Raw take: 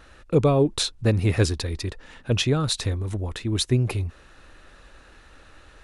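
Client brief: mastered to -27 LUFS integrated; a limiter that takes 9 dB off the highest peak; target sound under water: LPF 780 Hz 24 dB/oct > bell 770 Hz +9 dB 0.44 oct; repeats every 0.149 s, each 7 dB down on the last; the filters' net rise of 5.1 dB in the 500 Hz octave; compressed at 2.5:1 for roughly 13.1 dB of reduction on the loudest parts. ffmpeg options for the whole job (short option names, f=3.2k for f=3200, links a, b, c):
-af "equalizer=f=500:t=o:g=5,acompressor=threshold=-32dB:ratio=2.5,alimiter=level_in=3dB:limit=-24dB:level=0:latency=1,volume=-3dB,lowpass=f=780:w=0.5412,lowpass=f=780:w=1.3066,equalizer=f=770:t=o:w=0.44:g=9,aecho=1:1:149|298|447|596|745:0.447|0.201|0.0905|0.0407|0.0183,volume=9.5dB"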